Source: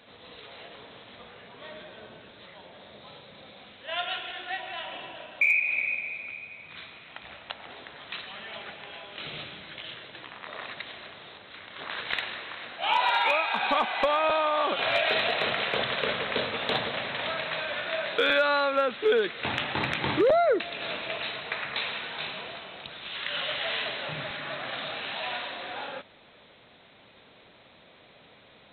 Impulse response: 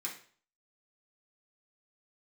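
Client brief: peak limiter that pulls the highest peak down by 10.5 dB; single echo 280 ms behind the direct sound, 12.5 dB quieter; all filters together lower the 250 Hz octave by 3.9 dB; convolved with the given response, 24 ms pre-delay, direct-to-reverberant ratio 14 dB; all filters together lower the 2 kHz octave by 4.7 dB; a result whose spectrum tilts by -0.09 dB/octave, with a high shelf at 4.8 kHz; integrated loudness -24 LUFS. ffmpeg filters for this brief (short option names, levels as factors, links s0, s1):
-filter_complex "[0:a]equalizer=f=250:t=o:g=-5.5,equalizer=f=2000:t=o:g=-8,highshelf=f=4800:g=8.5,alimiter=level_in=1.12:limit=0.0631:level=0:latency=1,volume=0.891,aecho=1:1:280:0.237,asplit=2[s0][s1];[1:a]atrim=start_sample=2205,adelay=24[s2];[s1][s2]afir=irnorm=-1:irlink=0,volume=0.188[s3];[s0][s3]amix=inputs=2:normalize=0,volume=3.35"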